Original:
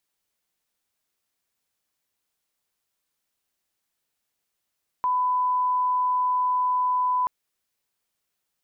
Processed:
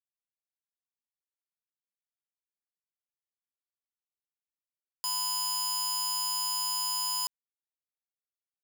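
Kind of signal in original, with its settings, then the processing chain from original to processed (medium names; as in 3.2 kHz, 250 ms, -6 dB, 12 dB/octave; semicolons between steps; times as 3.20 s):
line-up tone -20 dBFS 2.23 s
integer overflow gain 25.5 dB; bit crusher 10-bit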